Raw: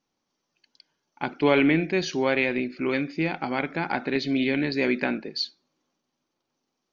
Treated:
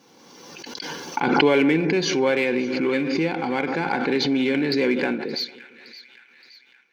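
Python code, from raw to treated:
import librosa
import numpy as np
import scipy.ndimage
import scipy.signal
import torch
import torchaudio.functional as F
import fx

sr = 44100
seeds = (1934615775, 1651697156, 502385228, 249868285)

p1 = np.clip(x, -10.0 ** (-25.0 / 20.0), 10.0 ** (-25.0 / 20.0))
p2 = x + F.gain(torch.from_numpy(p1), -7.5).numpy()
p3 = scipy.signal.sosfilt(scipy.signal.butter(2, 130.0, 'highpass', fs=sr, output='sos'), p2)
p4 = fx.peak_eq(p3, sr, hz=490.0, db=6.5, octaves=0.31)
p5 = fx.notch_comb(p4, sr, f0_hz=630.0)
p6 = fx.echo_split(p5, sr, split_hz=1400.0, low_ms=150, high_ms=570, feedback_pct=52, wet_db=-16.0)
y = fx.pre_swell(p6, sr, db_per_s=29.0)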